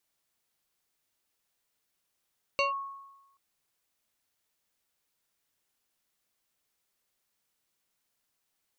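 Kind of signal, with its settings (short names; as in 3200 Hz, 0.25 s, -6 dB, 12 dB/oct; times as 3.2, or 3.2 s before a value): FM tone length 0.78 s, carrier 1100 Hz, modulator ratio 1.51, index 1.7, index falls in 0.14 s linear, decay 1.04 s, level -22 dB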